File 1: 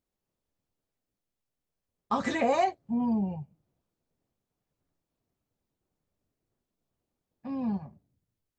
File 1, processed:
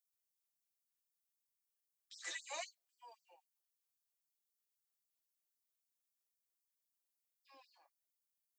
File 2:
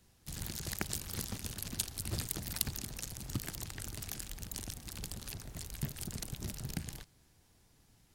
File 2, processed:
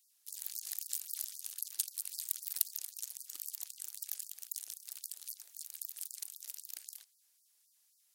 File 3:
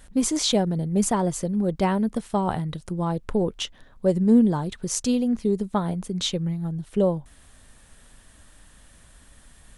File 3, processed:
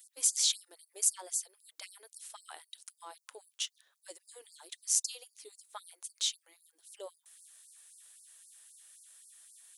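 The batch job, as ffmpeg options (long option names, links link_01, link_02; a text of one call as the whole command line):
ffmpeg -i in.wav -af "aderivative,afftfilt=real='re*gte(b*sr/1024,280*pow(4400/280,0.5+0.5*sin(2*PI*3.8*pts/sr)))':imag='im*gte(b*sr/1024,280*pow(4400/280,0.5+0.5*sin(2*PI*3.8*pts/sr)))':win_size=1024:overlap=0.75" out.wav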